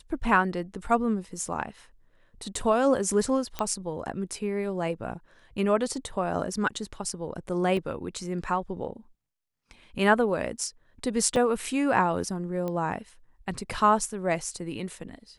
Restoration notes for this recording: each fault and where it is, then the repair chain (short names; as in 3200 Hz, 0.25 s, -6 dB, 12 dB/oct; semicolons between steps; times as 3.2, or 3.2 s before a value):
3.59 pop -15 dBFS
7.77 gap 2.4 ms
11.36 gap 4.1 ms
12.68 pop -20 dBFS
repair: de-click; interpolate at 7.77, 2.4 ms; interpolate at 11.36, 4.1 ms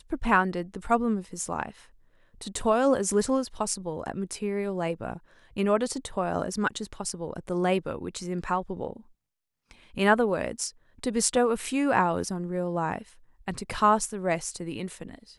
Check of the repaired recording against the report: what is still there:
none